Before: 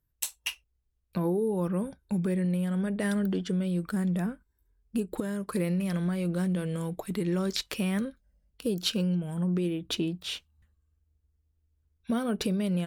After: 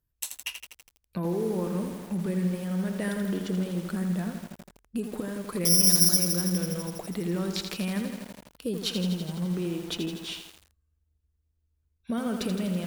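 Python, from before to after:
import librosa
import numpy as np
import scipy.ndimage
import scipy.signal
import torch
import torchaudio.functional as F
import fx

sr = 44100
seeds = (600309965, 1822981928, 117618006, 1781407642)

y = fx.resample_bad(x, sr, factor=8, down='filtered', up='zero_stuff', at=(5.65, 6.18))
y = fx.echo_crushed(y, sr, ms=82, feedback_pct=80, bits=7, wet_db=-6.5)
y = F.gain(torch.from_numpy(y), -2.0).numpy()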